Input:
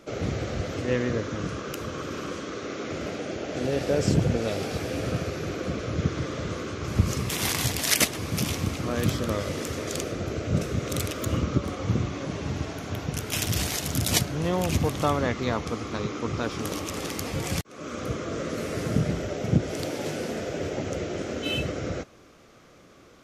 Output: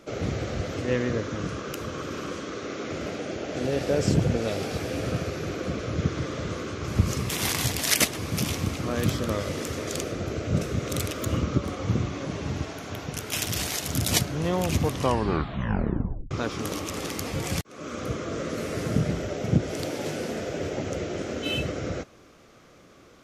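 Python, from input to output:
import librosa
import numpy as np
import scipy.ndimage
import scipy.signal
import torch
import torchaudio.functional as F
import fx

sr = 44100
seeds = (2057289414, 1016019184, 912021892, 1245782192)

y = fx.low_shelf(x, sr, hz=250.0, db=-6.0, at=(12.64, 13.89))
y = fx.edit(y, sr, fx.tape_stop(start_s=14.89, length_s=1.42), tone=tone)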